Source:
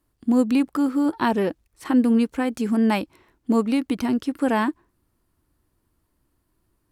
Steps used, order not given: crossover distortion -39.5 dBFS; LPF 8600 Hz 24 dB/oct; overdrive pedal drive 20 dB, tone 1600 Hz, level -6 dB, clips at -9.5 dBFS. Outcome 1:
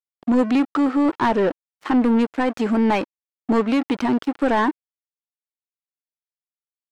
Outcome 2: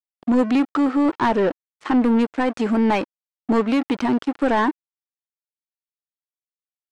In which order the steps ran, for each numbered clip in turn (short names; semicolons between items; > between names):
LPF > crossover distortion > overdrive pedal; crossover distortion > LPF > overdrive pedal